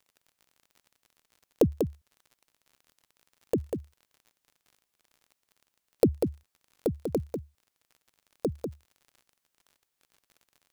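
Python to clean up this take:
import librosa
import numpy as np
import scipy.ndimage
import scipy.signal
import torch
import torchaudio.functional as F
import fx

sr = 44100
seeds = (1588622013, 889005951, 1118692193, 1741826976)

y = fx.fix_declick_ar(x, sr, threshold=6.5)
y = fx.fix_echo_inverse(y, sr, delay_ms=194, level_db=-6.0)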